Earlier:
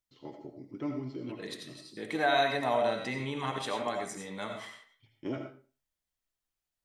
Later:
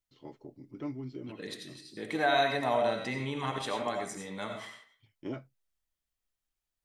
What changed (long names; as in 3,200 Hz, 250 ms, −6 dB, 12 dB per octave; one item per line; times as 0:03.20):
first voice: send off
master: add low-shelf EQ 71 Hz +6 dB